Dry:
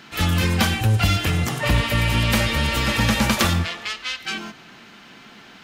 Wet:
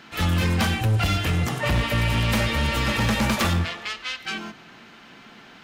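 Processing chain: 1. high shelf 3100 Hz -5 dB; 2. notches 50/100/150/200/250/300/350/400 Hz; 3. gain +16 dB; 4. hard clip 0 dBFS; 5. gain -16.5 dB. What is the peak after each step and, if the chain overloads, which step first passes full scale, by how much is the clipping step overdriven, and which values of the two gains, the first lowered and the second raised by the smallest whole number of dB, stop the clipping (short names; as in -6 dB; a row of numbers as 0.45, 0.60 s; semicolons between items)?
-7.0, -7.0, +9.0, 0.0, -16.5 dBFS; step 3, 9.0 dB; step 3 +7 dB, step 5 -7.5 dB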